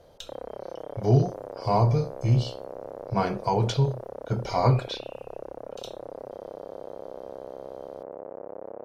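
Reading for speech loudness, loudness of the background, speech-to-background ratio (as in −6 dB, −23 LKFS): −26.0 LKFS, −40.0 LKFS, 14.0 dB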